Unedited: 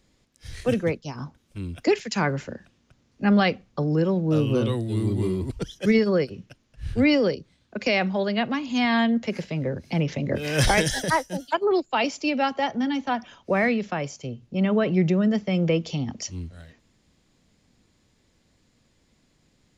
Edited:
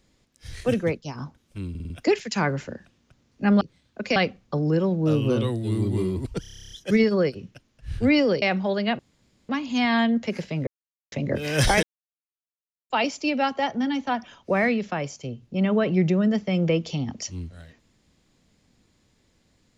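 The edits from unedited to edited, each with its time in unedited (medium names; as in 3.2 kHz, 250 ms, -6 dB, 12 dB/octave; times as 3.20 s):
1.70 s: stutter 0.05 s, 5 plays
5.66 s: stutter 0.03 s, 11 plays
7.37–7.92 s: move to 3.41 s
8.49 s: insert room tone 0.50 s
9.67–10.12 s: mute
10.83–11.90 s: mute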